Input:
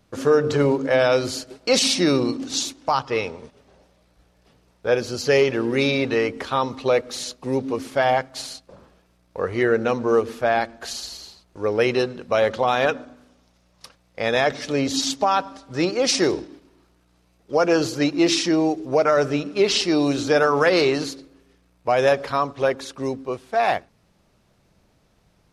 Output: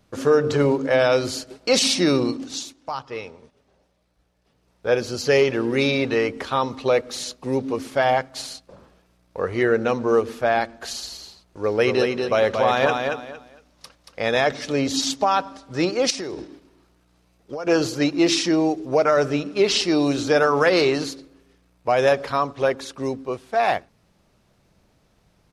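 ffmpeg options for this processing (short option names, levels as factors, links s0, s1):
-filter_complex "[0:a]asplit=3[s0][s1][s2];[s0]afade=t=out:st=11.63:d=0.02[s3];[s1]aecho=1:1:230|460|690:0.562|0.129|0.0297,afade=t=in:st=11.63:d=0.02,afade=t=out:st=14.3:d=0.02[s4];[s2]afade=t=in:st=14.3:d=0.02[s5];[s3][s4][s5]amix=inputs=3:normalize=0,asettb=1/sr,asplit=3[s6][s7][s8];[s6]atrim=end=16.104[s9];[s7]atrim=start=16.1:end=17.67,asetpts=PTS-STARTPTS,afade=t=in:d=0.004:c=qsin,afade=t=out:st=1.566:d=0.004:c=qsin,acompressor=threshold=0.0501:ratio=12:attack=3.2:release=140:knee=1:detection=peak[s10];[s8]atrim=start=17.666[s11];[s9][s10]acrossfade=d=0.004:c1=hsin:c2=qsin[s12];[s12][s11]acrossfade=d=0.004:c1=qsin:c2=hsin,asplit=3[s13][s14][s15];[s13]atrim=end=2.65,asetpts=PTS-STARTPTS,afade=t=out:st=2.27:d=0.38:silence=0.375837[s16];[s14]atrim=start=2.65:end=4.54,asetpts=PTS-STARTPTS,volume=0.376[s17];[s15]atrim=start=4.54,asetpts=PTS-STARTPTS,afade=t=in:d=0.38:silence=0.375837[s18];[s16][s17][s18]concat=n=3:v=0:a=1"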